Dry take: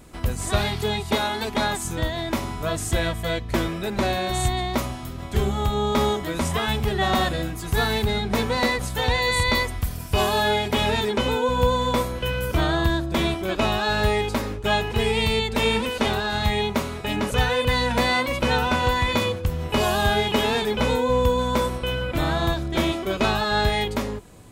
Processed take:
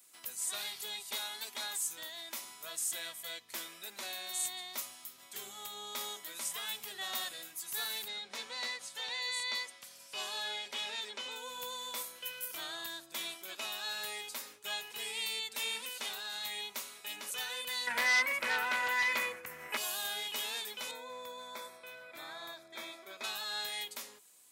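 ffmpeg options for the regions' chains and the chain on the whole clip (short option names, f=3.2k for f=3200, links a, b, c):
-filter_complex "[0:a]asettb=1/sr,asplit=3[a][b][c];[a]atrim=end=8.084[d];[b]atrim=start=8.08:end=11.36,asetpts=PTS-STARTPTS,afade=t=in:d=0.004:c=qsin,afade=t=out:st=3.276:d=0.004:c=qsin,highpass=120,lowpass=6.1k,aeval=exprs='val(0)+0.00891*sin(2*PI*550*n/s)':c=same[e];[c]atrim=start=11.356[f];[d][e]acrossfade=d=0.004:c1=hsin:c2=qsin[g];[g][f]acrossfade=d=0.004:c1=qsin:c2=hsin,asettb=1/sr,asplit=3[h][i][j];[h]atrim=end=17.874[k];[i]atrim=start=17.87:end=19.77,asetpts=PTS-STARTPTS,afade=t=in:d=0.004:c=qsin,afade=t=out:st=1.896:d=0.004:c=qsin,highshelf=f=2.7k:t=q:w=3:g=-10,aeval=exprs='0.447*sin(PI/2*1.78*val(0)/0.447)':c=same[l];[j]atrim=start=19.766[m];[k][l]acrossfade=d=0.004:c1=hsin:c2=qsin[n];[n][m]acrossfade=d=0.004:c1=qsin:c2=hsin,asettb=1/sr,asplit=3[o][p][q];[o]atrim=end=20.914[r];[p]atrim=start=20.91:end=23.24,asetpts=PTS-STARTPTS,afade=t=in:d=0.004:c=qsin,afade=t=out:st=2.326:d=0.004:c=qsin,bass=f=250:g=-2,treble=f=4k:g=-12,aeval=exprs='val(0)+0.0224*sin(2*PI*650*n/s)':c=same,asuperstop=centerf=2900:order=4:qfactor=5[s];[q]atrim=start=23.236[t];[r][s]acrossfade=d=0.004:c1=hsin:c2=qsin[u];[u][t]acrossfade=d=0.004:c1=qsin:c2=hsin,highpass=160,aderivative,volume=-4dB"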